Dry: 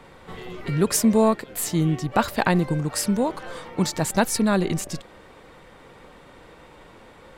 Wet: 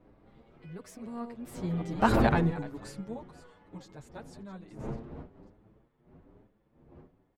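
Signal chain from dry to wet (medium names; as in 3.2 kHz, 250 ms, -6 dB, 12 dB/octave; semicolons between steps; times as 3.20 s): chunks repeated in reverse 323 ms, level -10.5 dB; wind noise 370 Hz -23 dBFS; Doppler pass-by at 2.15 s, 23 m/s, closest 3.1 m; low-pass 2.7 kHz 6 dB/octave; endless flanger 7.6 ms +1.1 Hz; trim +1.5 dB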